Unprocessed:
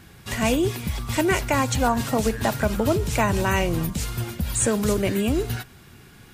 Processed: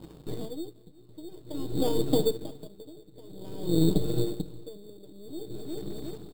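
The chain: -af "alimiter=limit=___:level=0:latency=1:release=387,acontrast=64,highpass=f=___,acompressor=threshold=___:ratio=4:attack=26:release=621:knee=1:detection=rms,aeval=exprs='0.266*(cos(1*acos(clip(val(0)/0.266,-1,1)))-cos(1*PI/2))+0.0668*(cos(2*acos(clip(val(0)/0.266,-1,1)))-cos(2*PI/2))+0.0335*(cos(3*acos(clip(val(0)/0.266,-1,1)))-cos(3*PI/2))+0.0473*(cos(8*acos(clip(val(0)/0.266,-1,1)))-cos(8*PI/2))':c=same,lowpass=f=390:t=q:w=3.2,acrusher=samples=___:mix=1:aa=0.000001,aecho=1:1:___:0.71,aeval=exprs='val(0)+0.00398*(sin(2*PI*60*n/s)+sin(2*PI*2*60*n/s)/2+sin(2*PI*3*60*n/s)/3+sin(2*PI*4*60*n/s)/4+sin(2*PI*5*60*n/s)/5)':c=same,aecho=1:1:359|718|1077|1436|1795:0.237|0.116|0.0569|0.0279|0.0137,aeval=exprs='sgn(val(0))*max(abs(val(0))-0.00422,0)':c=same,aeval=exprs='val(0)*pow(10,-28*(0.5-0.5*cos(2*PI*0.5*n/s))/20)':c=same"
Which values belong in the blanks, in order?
0.299, 120, 0.0794, 11, 6.5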